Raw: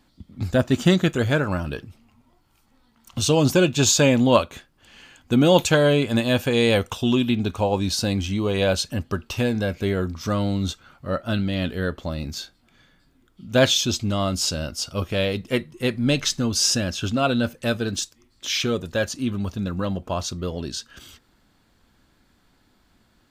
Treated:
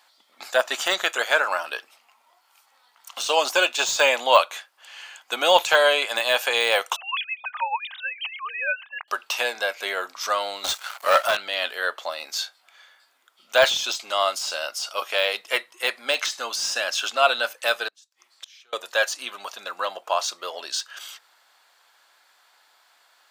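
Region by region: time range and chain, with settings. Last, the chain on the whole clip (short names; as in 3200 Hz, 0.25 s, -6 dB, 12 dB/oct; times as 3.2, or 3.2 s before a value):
6.96–9.08 sine-wave speech + HPF 930 Hz 24 dB/oct
10.64–11.37 high shelf 4900 Hz +11.5 dB + upward compressor, threshold -44 dBFS + sample leveller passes 3
17.88–18.73 high shelf 12000 Hz -4 dB + flipped gate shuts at -31 dBFS, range -33 dB
whole clip: HPF 680 Hz 24 dB/oct; de-esser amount 65%; gain +7 dB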